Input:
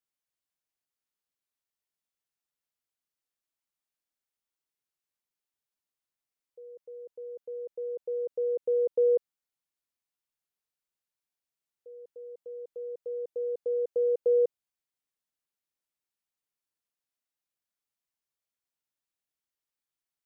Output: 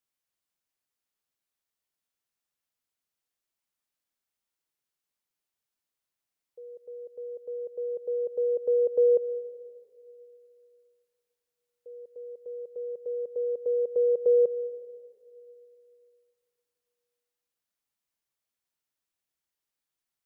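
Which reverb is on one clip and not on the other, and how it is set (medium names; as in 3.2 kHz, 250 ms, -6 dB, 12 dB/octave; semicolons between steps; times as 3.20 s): algorithmic reverb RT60 2.6 s, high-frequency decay 0.55×, pre-delay 90 ms, DRR 16.5 dB; trim +2.5 dB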